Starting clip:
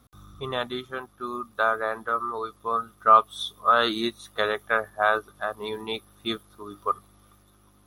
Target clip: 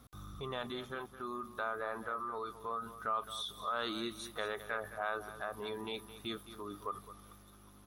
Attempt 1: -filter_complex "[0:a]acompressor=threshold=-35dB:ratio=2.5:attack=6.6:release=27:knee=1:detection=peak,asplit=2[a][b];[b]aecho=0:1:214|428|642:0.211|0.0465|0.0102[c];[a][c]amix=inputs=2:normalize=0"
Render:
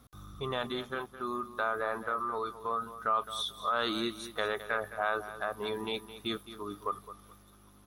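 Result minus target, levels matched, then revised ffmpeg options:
compressor: peak gain reduction -6 dB
-filter_complex "[0:a]acompressor=threshold=-45dB:ratio=2.5:attack=6.6:release=27:knee=1:detection=peak,asplit=2[a][b];[b]aecho=0:1:214|428|642:0.211|0.0465|0.0102[c];[a][c]amix=inputs=2:normalize=0"

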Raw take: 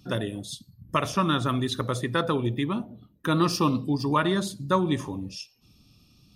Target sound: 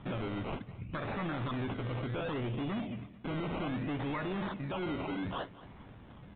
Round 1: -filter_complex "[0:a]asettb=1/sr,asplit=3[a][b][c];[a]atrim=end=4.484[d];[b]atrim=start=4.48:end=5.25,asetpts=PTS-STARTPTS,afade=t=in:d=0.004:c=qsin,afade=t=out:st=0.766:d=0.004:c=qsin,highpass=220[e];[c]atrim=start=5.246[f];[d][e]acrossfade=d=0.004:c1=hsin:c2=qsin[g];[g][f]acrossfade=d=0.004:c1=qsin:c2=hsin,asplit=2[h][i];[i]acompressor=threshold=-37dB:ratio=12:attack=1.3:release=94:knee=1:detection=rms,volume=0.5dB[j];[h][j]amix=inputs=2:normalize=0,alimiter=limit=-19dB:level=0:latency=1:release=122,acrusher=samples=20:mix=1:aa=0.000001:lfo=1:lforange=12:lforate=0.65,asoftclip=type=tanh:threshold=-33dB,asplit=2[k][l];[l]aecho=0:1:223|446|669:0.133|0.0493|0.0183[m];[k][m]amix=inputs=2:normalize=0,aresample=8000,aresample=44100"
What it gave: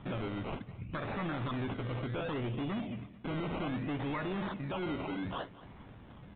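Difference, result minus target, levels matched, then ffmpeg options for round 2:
compressor: peak gain reduction +9.5 dB
-filter_complex "[0:a]asettb=1/sr,asplit=3[a][b][c];[a]atrim=end=4.484[d];[b]atrim=start=4.48:end=5.25,asetpts=PTS-STARTPTS,afade=t=in:d=0.004:c=qsin,afade=t=out:st=0.766:d=0.004:c=qsin,highpass=220[e];[c]atrim=start=5.246[f];[d][e]acrossfade=d=0.004:c1=hsin:c2=qsin[g];[g][f]acrossfade=d=0.004:c1=qsin:c2=hsin,asplit=2[h][i];[i]acompressor=threshold=-26.5dB:ratio=12:attack=1.3:release=94:knee=1:detection=rms,volume=0.5dB[j];[h][j]amix=inputs=2:normalize=0,alimiter=limit=-19dB:level=0:latency=1:release=122,acrusher=samples=20:mix=1:aa=0.000001:lfo=1:lforange=12:lforate=0.65,asoftclip=type=tanh:threshold=-33dB,asplit=2[k][l];[l]aecho=0:1:223|446|669:0.133|0.0493|0.0183[m];[k][m]amix=inputs=2:normalize=0,aresample=8000,aresample=44100"

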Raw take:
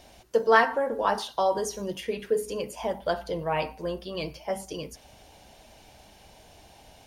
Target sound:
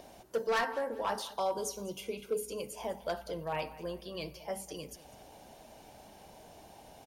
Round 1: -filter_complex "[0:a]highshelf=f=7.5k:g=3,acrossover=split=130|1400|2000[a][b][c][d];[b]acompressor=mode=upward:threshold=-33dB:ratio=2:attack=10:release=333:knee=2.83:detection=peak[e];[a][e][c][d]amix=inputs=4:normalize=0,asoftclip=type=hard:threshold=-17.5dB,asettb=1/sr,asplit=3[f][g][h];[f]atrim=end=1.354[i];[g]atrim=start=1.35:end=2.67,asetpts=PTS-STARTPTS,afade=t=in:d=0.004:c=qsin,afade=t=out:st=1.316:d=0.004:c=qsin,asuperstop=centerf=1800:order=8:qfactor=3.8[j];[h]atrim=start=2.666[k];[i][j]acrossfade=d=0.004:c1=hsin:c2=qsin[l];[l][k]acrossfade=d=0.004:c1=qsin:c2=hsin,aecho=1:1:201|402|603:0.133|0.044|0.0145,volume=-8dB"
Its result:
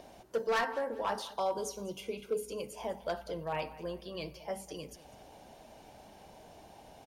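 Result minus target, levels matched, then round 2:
8000 Hz band -3.0 dB
-filter_complex "[0:a]highshelf=f=7.5k:g=10,acrossover=split=130|1400|2000[a][b][c][d];[b]acompressor=mode=upward:threshold=-33dB:ratio=2:attack=10:release=333:knee=2.83:detection=peak[e];[a][e][c][d]amix=inputs=4:normalize=0,asoftclip=type=hard:threshold=-17.5dB,asettb=1/sr,asplit=3[f][g][h];[f]atrim=end=1.354[i];[g]atrim=start=1.35:end=2.67,asetpts=PTS-STARTPTS,afade=t=in:d=0.004:c=qsin,afade=t=out:st=1.316:d=0.004:c=qsin,asuperstop=centerf=1800:order=8:qfactor=3.8[j];[h]atrim=start=2.666[k];[i][j]acrossfade=d=0.004:c1=hsin:c2=qsin[l];[l][k]acrossfade=d=0.004:c1=qsin:c2=hsin,aecho=1:1:201|402|603:0.133|0.044|0.0145,volume=-8dB"

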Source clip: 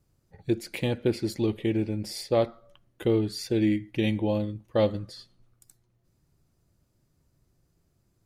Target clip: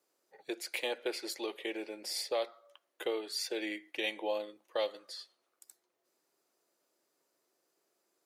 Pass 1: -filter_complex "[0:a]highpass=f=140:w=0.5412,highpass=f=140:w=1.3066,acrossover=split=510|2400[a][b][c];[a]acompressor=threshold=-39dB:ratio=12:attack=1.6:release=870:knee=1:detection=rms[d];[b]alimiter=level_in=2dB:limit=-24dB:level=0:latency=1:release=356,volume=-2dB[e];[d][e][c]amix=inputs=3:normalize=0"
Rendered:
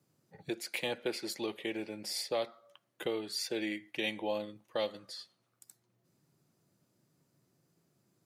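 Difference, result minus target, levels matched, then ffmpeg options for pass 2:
125 Hz band +19.0 dB
-filter_complex "[0:a]highpass=f=380:w=0.5412,highpass=f=380:w=1.3066,acrossover=split=510|2400[a][b][c];[a]acompressor=threshold=-39dB:ratio=12:attack=1.6:release=870:knee=1:detection=rms[d];[b]alimiter=level_in=2dB:limit=-24dB:level=0:latency=1:release=356,volume=-2dB[e];[d][e][c]amix=inputs=3:normalize=0"

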